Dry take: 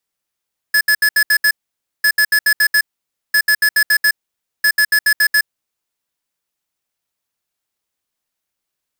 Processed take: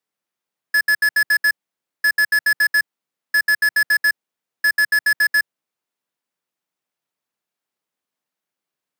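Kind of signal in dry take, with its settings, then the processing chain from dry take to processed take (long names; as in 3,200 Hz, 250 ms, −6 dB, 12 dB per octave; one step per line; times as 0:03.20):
beeps in groups square 1,710 Hz, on 0.07 s, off 0.07 s, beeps 6, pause 0.53 s, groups 4, −12 dBFS
high-pass filter 140 Hz 24 dB per octave
high-shelf EQ 3,000 Hz −8.5 dB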